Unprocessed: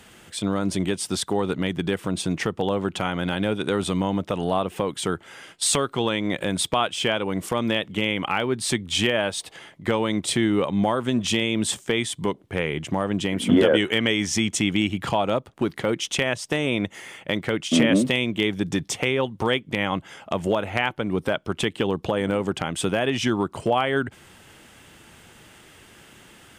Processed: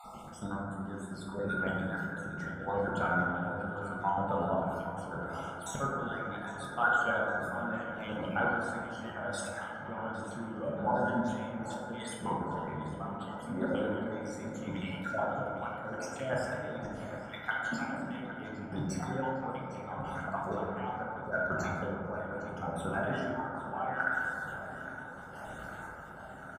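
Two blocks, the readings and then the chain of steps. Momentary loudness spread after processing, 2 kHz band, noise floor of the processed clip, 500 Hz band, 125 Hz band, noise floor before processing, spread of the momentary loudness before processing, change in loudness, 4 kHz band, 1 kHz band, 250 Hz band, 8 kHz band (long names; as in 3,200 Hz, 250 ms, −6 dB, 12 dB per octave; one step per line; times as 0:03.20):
10 LU, −7.0 dB, −45 dBFS, −11.5 dB, −10.5 dB, −51 dBFS, 6 LU, −11.5 dB, −24.0 dB, −5.0 dB, −13.5 dB, −20.0 dB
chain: time-frequency cells dropped at random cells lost 54%
reversed playback
downward compressor 10 to 1, threshold −35 dBFS, peak gain reduction 22.5 dB
reversed playback
high shelf with overshoot 1,800 Hz −7 dB, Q 3
comb filter 1.4 ms, depth 50%
square-wave tremolo 0.75 Hz, depth 60%, duty 40%
parametric band 950 Hz +3.5 dB 0.77 octaves
on a send: feedback echo with a low-pass in the loop 808 ms, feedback 77%, low-pass 4,500 Hz, level −13 dB
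on the sum: dense smooth reverb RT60 2.3 s, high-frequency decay 0.25×, DRR −5 dB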